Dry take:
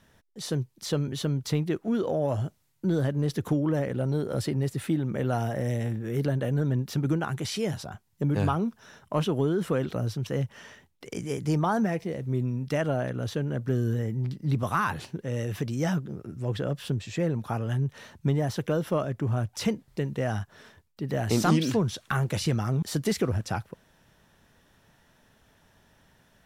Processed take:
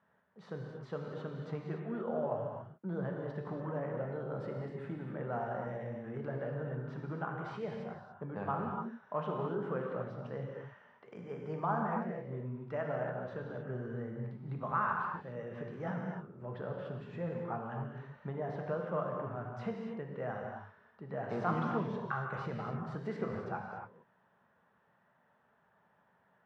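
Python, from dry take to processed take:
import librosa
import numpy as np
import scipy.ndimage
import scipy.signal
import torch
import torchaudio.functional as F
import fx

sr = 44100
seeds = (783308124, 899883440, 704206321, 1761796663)

y = scipy.signal.sosfilt(scipy.signal.cheby1(2, 1.0, [210.0, 1300.0], 'bandpass', fs=sr, output='sos'), x)
y = fx.peak_eq(y, sr, hz=290.0, db=-14.0, octaves=0.93)
y = fx.rev_gated(y, sr, seeds[0], gate_ms=310, shape='flat', drr_db=0.0)
y = y * librosa.db_to_amplitude(-5.5)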